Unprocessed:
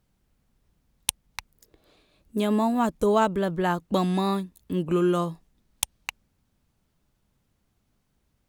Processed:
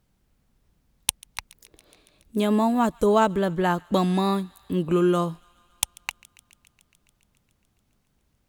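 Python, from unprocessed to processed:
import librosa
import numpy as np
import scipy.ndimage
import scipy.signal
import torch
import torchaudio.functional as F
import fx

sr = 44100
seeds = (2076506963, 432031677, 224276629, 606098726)

y = fx.echo_wet_highpass(x, sr, ms=140, feedback_pct=77, hz=1500.0, wet_db=-24.0)
y = y * librosa.db_to_amplitude(2.0)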